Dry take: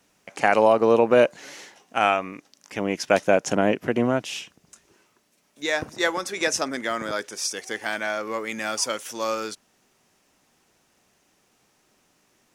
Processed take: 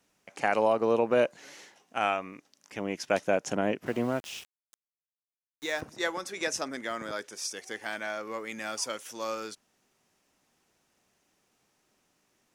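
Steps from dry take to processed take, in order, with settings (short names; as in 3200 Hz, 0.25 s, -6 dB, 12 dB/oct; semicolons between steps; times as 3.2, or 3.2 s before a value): 3.86–5.81 sample gate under -35.5 dBFS; gain -7.5 dB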